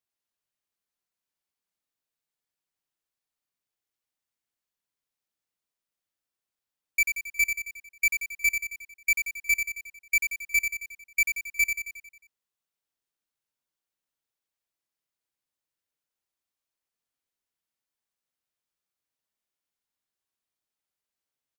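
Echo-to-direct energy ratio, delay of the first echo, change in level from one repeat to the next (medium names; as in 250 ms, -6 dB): -4.5 dB, 90 ms, -5.0 dB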